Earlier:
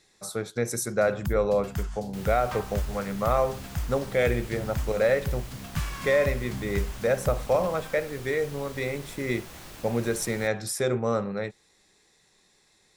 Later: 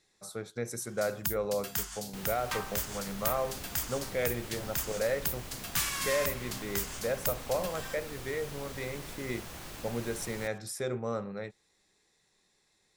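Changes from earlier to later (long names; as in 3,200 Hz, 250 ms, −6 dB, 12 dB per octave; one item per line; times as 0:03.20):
speech −8.0 dB
first sound: add spectral tilt +4 dB per octave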